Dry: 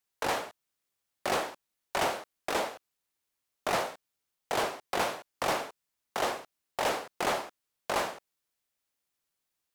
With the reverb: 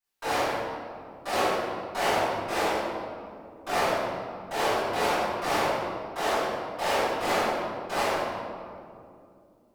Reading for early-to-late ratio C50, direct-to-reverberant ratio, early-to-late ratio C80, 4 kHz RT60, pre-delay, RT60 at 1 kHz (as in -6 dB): -4.0 dB, -18.5 dB, -1.5 dB, 1.3 s, 3 ms, 2.2 s